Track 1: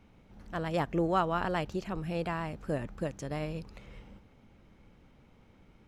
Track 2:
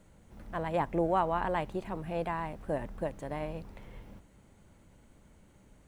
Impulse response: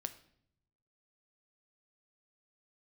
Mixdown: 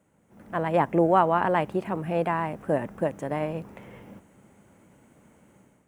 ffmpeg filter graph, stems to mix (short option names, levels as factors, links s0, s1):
-filter_complex "[0:a]lowpass=4700,volume=0.224[s0];[1:a]volume=0.631[s1];[s0][s1]amix=inputs=2:normalize=0,highpass=140,equalizer=f=4200:w=1.6:g=-10,dynaudnorm=f=280:g=3:m=3.16"